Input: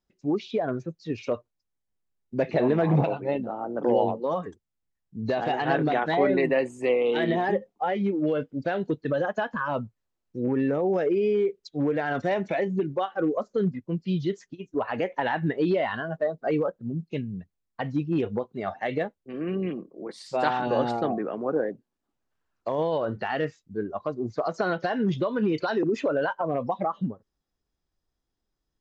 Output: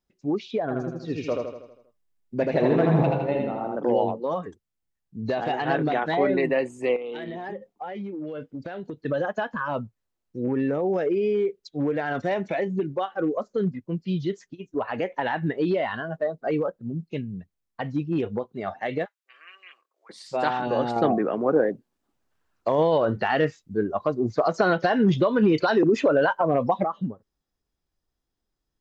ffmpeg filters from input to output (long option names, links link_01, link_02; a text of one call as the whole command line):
ffmpeg -i in.wav -filter_complex "[0:a]asettb=1/sr,asplit=3[link_01][link_02][link_03];[link_01]atrim=end=0.624[link_04];[link_02]atrim=start=0.62:end=3.76,asetpts=PTS-STARTPTS,afade=type=in:duration=0.004:curve=qsin,afade=type=out:start_time=3.136:duration=0.004:curve=qsin,aecho=1:1:80|160|240|320|400|480|560:0.708|0.368|0.191|0.0995|0.0518|0.0269|0.014,atrim=end_sample=138474[link_05];[link_03]atrim=start=3.756[link_06];[link_04][link_05]acrossfade=duration=0.004:curve1=hsin:curve2=qsin[link_07];[link_07][link_06]acrossfade=duration=0.004:curve1=qsin:curve2=hsin,asettb=1/sr,asplit=3[link_08][link_09][link_10];[link_08]atrim=end=6.964[link_11];[link_09]atrim=start=6.96:end=9.02,asetpts=PTS-STARTPTS,afade=type=in:duration=0.004:curve=qsin,afade=type=out:start_time=2.056:duration=0.004:curve=qsin,acompressor=threshold=-30dB:ratio=12:attack=3.2:release=140:knee=1:detection=peak[link_12];[link_10]atrim=start=9.016[link_13];[link_11][link_12]acrossfade=duration=0.004:curve1=hsin:curve2=qsin[link_14];[link_14][link_13]acrossfade=duration=0.004:curve1=qsin:curve2=hsin,asplit=3[link_15][link_16][link_17];[link_15]afade=type=out:start_time=19.04:duration=0.02[link_18];[link_16]highpass=frequency=1200:width=0.5412,highpass=frequency=1200:width=1.3066,afade=type=in:start_time=19.04:duration=0.02,afade=type=out:start_time=20.09:duration=0.02[link_19];[link_17]afade=type=in:start_time=20.09:duration=0.02[link_20];[link_18][link_19][link_20]amix=inputs=3:normalize=0,asettb=1/sr,asplit=3[link_21][link_22][link_23];[link_21]atrim=end=20.964[link_24];[link_22]atrim=start=20.96:end=26.84,asetpts=PTS-STARTPTS,afade=type=in:duration=0.004:curve=qsin,afade=type=out:start_time=5.876:duration=0.004:curve=qsin,acontrast=41[link_25];[link_23]atrim=start=26.836[link_26];[link_24][link_25]acrossfade=duration=0.004:curve1=hsin:curve2=qsin[link_27];[link_27][link_26]acrossfade=duration=0.004:curve1=qsin:curve2=hsin" out.wav